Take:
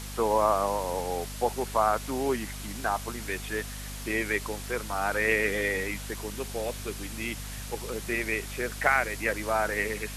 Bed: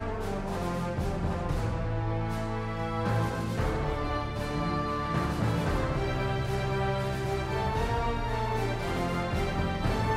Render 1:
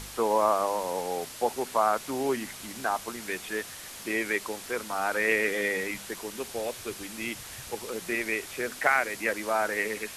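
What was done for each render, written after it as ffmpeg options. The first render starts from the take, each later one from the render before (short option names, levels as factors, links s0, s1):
-af "bandreject=f=50:t=h:w=4,bandreject=f=100:t=h:w=4,bandreject=f=150:t=h:w=4,bandreject=f=200:t=h:w=4,bandreject=f=250:t=h:w=4"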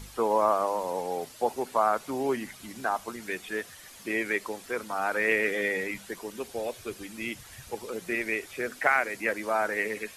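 -af "afftdn=nr=9:nf=-43"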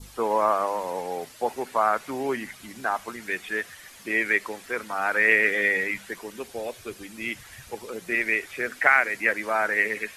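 -af "adynamicequalizer=threshold=0.00794:dfrequency=1900:dqfactor=1.2:tfrequency=1900:tqfactor=1.2:attack=5:release=100:ratio=0.375:range=4:mode=boostabove:tftype=bell"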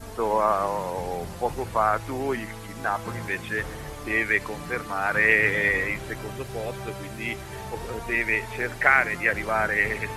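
-filter_complex "[1:a]volume=0.422[s0];[0:a][s0]amix=inputs=2:normalize=0"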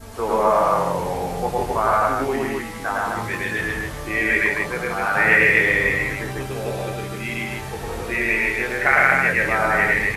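-filter_complex "[0:a]asplit=2[s0][s1];[s1]adelay=22,volume=0.473[s2];[s0][s2]amix=inputs=2:normalize=0,aecho=1:1:107.9|160.3|256.6:1|0.631|0.708"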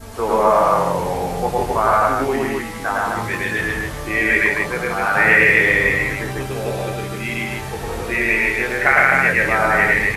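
-af "volume=1.41,alimiter=limit=0.891:level=0:latency=1"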